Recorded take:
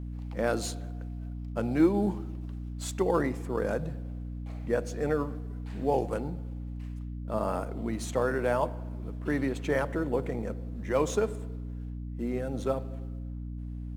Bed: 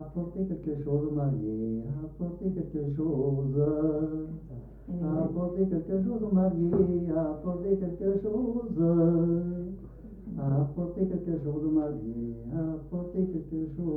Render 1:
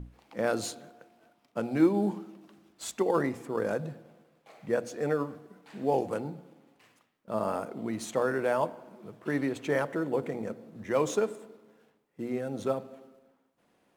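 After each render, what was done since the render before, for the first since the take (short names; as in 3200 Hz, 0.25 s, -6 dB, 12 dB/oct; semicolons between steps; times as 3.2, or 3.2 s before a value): notches 60/120/180/240/300 Hz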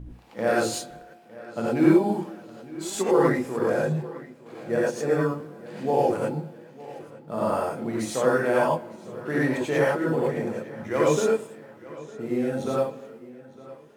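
darkening echo 0.907 s, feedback 47%, low-pass 4900 Hz, level -18.5 dB; non-linear reverb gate 0.13 s rising, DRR -5.5 dB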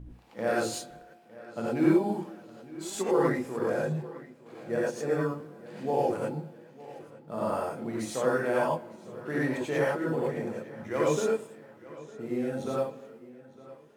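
gain -5 dB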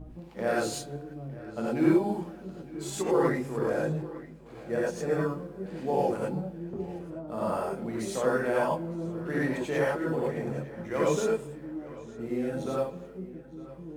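add bed -11.5 dB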